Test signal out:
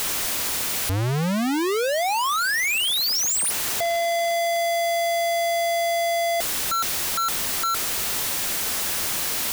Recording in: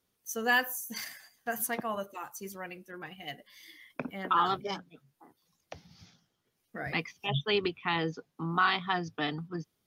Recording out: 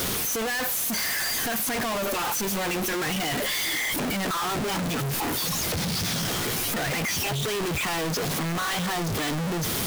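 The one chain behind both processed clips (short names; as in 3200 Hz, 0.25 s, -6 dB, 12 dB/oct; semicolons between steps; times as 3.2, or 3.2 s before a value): infinite clipping; gain +7.5 dB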